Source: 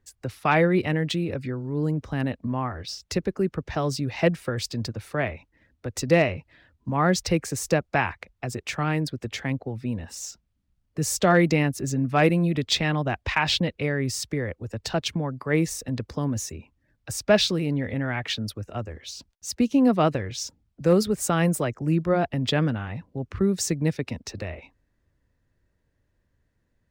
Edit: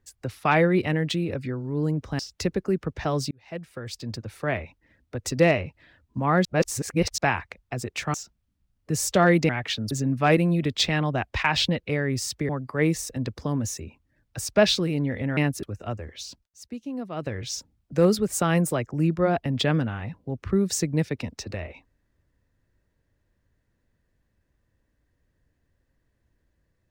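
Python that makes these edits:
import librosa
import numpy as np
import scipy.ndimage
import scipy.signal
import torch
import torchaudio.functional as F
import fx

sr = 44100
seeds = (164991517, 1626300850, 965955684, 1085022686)

y = fx.edit(x, sr, fx.cut(start_s=2.19, length_s=0.71),
    fx.fade_in_span(start_s=4.02, length_s=1.27),
    fx.reverse_span(start_s=7.16, length_s=0.73),
    fx.cut(start_s=8.85, length_s=1.37),
    fx.swap(start_s=11.57, length_s=0.26, other_s=18.09, other_length_s=0.42),
    fx.cut(start_s=14.41, length_s=0.8),
    fx.fade_down_up(start_s=19.1, length_s=1.25, db=-14.0, fade_s=0.31, curve='qsin'), tone=tone)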